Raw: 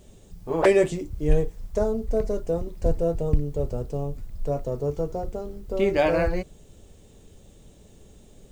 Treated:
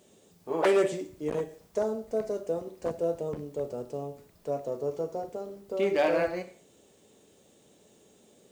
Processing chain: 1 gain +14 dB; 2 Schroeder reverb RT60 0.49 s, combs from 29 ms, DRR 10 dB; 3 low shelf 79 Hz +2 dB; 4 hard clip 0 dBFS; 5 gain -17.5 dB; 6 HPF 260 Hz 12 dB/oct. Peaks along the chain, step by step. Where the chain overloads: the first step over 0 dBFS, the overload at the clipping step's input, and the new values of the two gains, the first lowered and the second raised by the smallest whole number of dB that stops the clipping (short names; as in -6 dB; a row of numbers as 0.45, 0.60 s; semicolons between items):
+7.0, +7.0, +8.0, 0.0, -17.5, -12.5 dBFS; step 1, 8.0 dB; step 1 +6 dB, step 5 -9.5 dB